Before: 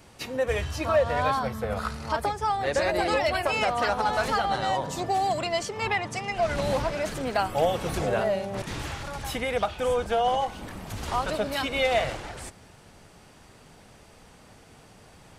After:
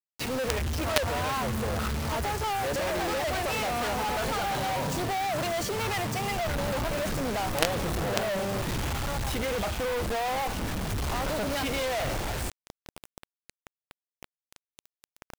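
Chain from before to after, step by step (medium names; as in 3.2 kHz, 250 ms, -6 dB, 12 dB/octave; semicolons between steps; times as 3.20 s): tilt EQ -1.5 dB/octave; companded quantiser 2-bit; trim -3.5 dB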